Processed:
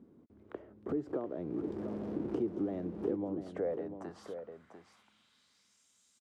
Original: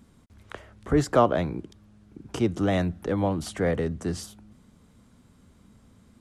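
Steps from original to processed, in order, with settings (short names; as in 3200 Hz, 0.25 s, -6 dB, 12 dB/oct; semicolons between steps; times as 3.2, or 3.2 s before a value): 0.89–3.17 zero-crossing step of -30 dBFS; compressor 16:1, threshold -32 dBFS, peak gain reduction 19.5 dB; band-pass sweep 350 Hz -> 6700 Hz, 3.31–5.85; echo 0.694 s -9 dB; gain +5.5 dB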